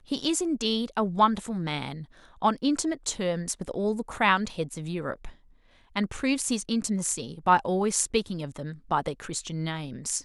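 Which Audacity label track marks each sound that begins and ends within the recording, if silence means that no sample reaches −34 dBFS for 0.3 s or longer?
2.420000	5.290000	sound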